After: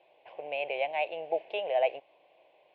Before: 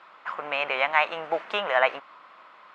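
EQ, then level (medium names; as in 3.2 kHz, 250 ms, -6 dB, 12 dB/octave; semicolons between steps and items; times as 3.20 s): four-pole ladder low-pass 2.8 kHz, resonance 25%; high-order bell 1.4 kHz -15.5 dB 1.3 oct; static phaser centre 540 Hz, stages 4; +4.5 dB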